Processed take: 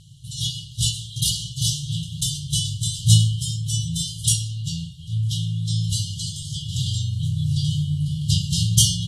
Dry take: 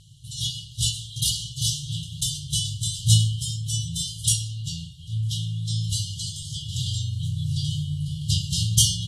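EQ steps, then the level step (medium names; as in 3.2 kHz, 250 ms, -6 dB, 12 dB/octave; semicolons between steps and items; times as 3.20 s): peaking EQ 190 Hz +6 dB 0.99 oct; +1.5 dB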